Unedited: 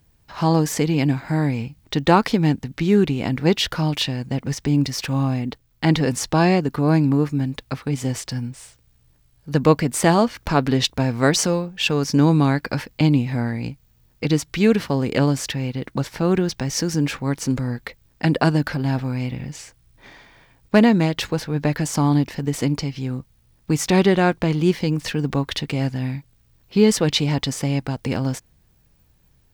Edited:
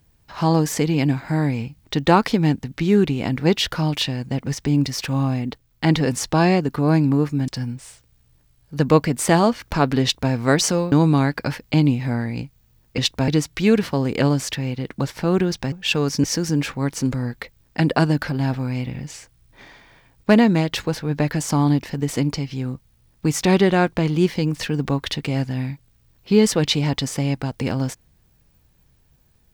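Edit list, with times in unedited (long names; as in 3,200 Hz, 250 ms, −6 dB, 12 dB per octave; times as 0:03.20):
0:07.48–0:08.23: remove
0:10.77–0:11.07: duplicate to 0:14.25
0:11.67–0:12.19: move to 0:16.69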